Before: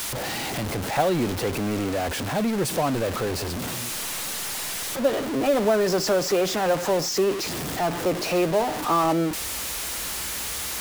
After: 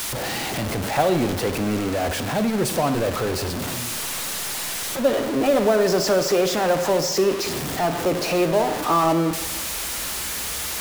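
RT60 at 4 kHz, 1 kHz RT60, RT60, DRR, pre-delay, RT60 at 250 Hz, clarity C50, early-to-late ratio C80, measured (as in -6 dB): 0.80 s, 1.3 s, 1.3 s, 9.5 dB, 29 ms, 1.2 s, 11.0 dB, 12.5 dB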